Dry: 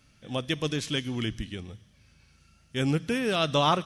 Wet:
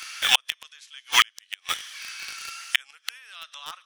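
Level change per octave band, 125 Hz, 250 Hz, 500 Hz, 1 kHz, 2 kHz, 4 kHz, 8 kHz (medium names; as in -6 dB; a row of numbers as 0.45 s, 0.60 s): under -25 dB, under -25 dB, -20.0 dB, -1.0 dB, +8.5 dB, +8.0 dB, +11.5 dB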